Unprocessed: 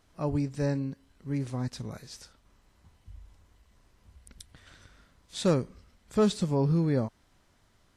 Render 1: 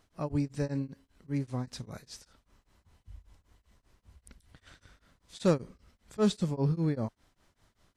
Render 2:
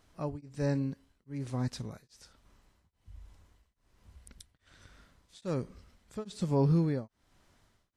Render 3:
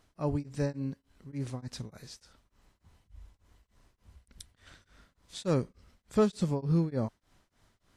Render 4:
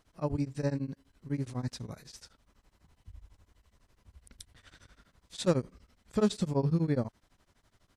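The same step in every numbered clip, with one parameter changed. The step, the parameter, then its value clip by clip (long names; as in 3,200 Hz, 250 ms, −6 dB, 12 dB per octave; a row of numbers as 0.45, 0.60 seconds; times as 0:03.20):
tremolo along a rectified sine, nulls at: 5.1, 1.2, 3.4, 12 Hertz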